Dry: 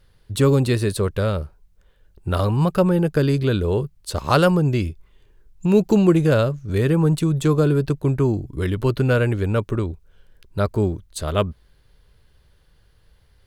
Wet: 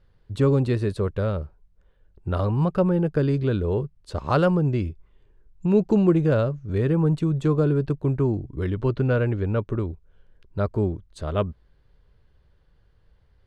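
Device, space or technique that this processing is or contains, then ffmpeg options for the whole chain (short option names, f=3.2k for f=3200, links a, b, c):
through cloth: -filter_complex "[0:a]asettb=1/sr,asplit=3[a][b][c];[a]atrim=end=8.744[d];[b]atrim=start=8.74:end=9.69,asetpts=PTS-STARTPTS,afade=t=in:d=0.004:c=qsin,afade=t=out:st=0.946:d=0.004:c=qsin,lowpass=7k[e];[c]atrim=start=9.686[f];[d][e]acrossfade=d=0.004:c1=hsin:c2=qsin[g];[g][f]acrossfade=d=0.004:c1=qsin:c2=hsin,lowpass=7.8k,highshelf=f=2.5k:g=-12,volume=-3dB"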